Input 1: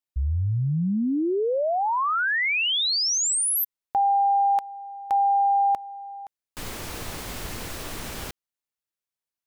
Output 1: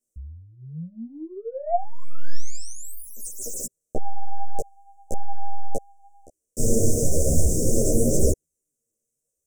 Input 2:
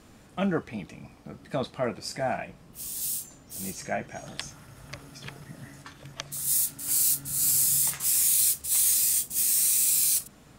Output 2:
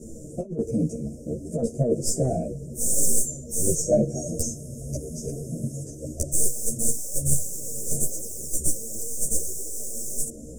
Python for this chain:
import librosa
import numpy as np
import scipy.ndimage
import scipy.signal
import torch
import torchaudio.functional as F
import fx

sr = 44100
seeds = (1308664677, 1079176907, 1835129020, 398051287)

y = fx.tracing_dist(x, sr, depth_ms=0.18)
y = scipy.signal.sosfilt(scipy.signal.cheby2(5, 40, [860.0, 4300.0], 'bandstop', fs=sr, output='sos'), y)
y = fx.over_compress(y, sr, threshold_db=-33.0, ratio=-0.5)
y = fx.low_shelf(y, sr, hz=440.0, db=11.0)
y = fx.doubler(y, sr, ms=13.0, db=-3)
y = fx.chorus_voices(y, sr, voices=4, hz=0.46, base_ms=13, depth_ms=4.7, mix_pct=60)
y = fx.graphic_eq(y, sr, hz=(500, 2000, 4000, 8000), db=(9, 11, 6, 12))